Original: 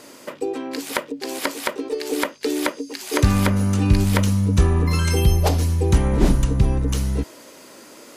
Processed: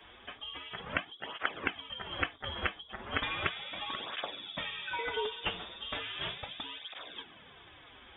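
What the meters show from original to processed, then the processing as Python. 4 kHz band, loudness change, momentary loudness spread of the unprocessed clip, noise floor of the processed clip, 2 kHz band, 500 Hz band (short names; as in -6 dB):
-4.5 dB, -16.0 dB, 10 LU, -55 dBFS, -5.5 dB, -17.0 dB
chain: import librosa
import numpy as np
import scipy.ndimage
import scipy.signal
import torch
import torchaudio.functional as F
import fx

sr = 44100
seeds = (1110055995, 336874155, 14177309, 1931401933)

y = np.diff(x, prepend=0.0)
y = fx.dmg_noise_band(y, sr, seeds[0], low_hz=52.0, high_hz=410.0, level_db=-69.0)
y = fx.freq_invert(y, sr, carrier_hz=3600)
y = fx.flanger_cancel(y, sr, hz=0.36, depth_ms=7.9)
y = F.gain(torch.from_numpy(y), 9.0).numpy()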